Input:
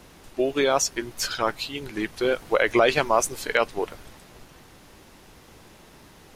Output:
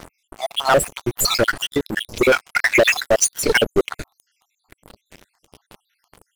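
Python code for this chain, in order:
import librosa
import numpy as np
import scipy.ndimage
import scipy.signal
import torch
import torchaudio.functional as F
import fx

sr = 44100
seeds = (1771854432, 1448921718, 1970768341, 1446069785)

y = fx.spec_dropout(x, sr, seeds[0], share_pct=75)
y = fx.leveller(y, sr, passes=5)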